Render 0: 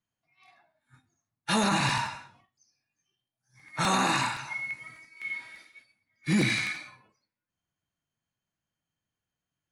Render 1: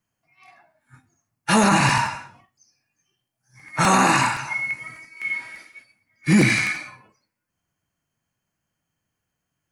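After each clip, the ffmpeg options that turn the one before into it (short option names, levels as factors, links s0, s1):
-af "equalizer=f=3700:w=4.1:g=-10.5,volume=2.82"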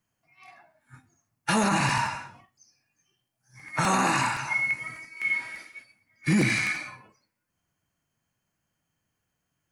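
-af "alimiter=limit=0.188:level=0:latency=1:release=338"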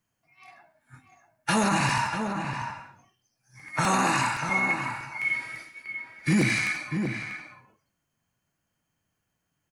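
-filter_complex "[0:a]asplit=2[s0][s1];[s1]adelay=641.4,volume=0.501,highshelf=f=4000:g=-14.4[s2];[s0][s2]amix=inputs=2:normalize=0"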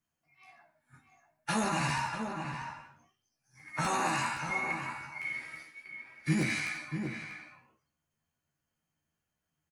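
-filter_complex "[0:a]flanger=delay=9.9:depth=10:regen=79:speed=0.61:shape=triangular,asplit=2[s0][s1];[s1]adelay=13,volume=0.708[s2];[s0][s2]amix=inputs=2:normalize=0,volume=0.631"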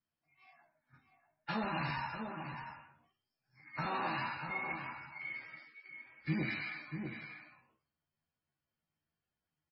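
-filter_complex "[0:a]acrossover=split=5700[s0][s1];[s1]acompressor=threshold=0.001:ratio=4:attack=1:release=60[s2];[s0][s2]amix=inputs=2:normalize=0,volume=0.531" -ar 22050 -c:a libmp3lame -b:a 16k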